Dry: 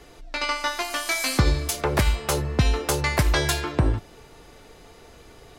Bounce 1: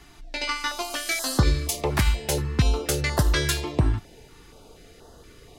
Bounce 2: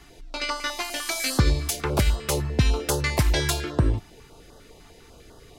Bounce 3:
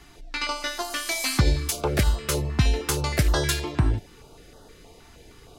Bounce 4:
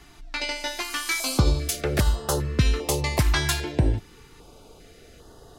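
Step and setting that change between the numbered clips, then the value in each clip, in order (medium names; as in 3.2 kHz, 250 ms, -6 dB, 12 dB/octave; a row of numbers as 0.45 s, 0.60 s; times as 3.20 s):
step-sequenced notch, rate: 4.2 Hz, 10 Hz, 6.4 Hz, 2.5 Hz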